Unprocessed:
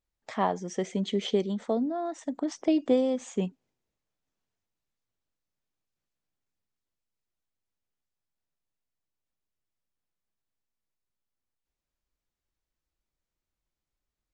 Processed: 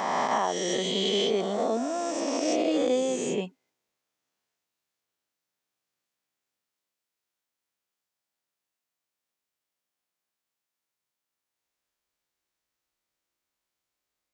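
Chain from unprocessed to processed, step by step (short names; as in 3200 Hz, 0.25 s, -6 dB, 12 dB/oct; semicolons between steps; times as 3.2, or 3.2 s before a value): spectral swells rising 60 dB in 2.64 s; HPF 560 Hz 6 dB/oct; limiter -19.5 dBFS, peak gain reduction 6 dB; gain +3 dB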